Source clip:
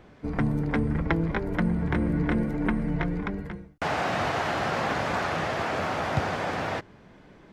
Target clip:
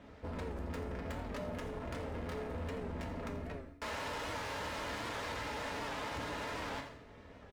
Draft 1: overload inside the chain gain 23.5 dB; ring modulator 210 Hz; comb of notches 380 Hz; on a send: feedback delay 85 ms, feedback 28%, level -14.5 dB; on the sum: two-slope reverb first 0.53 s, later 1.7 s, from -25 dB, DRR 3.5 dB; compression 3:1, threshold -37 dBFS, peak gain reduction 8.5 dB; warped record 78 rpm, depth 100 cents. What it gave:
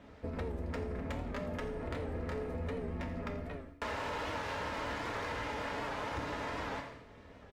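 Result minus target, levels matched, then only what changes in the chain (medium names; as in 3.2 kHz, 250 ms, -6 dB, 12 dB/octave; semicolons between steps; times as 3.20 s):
overload inside the chain: distortion -8 dB
change: overload inside the chain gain 34 dB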